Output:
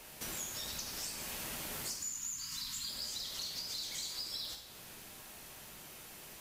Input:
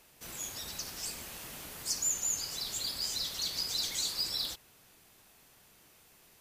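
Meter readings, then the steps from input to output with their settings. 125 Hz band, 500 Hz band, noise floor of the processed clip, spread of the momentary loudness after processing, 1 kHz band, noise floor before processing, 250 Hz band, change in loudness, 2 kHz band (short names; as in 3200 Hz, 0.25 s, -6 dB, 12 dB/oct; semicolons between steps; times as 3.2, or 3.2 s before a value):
-1.5 dB, -1.0 dB, -52 dBFS, 11 LU, -1.0 dB, -62 dBFS, -0.5 dB, -6.5 dB, -1.0 dB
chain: spectral gain 1.94–2.89, 320–900 Hz -26 dB; compressor 12:1, threshold -48 dBFS, peak gain reduction 21 dB; vibrato 11 Hz 44 cents; two-slope reverb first 0.89 s, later 3.2 s, from -25 dB, DRR 2.5 dB; gain +8 dB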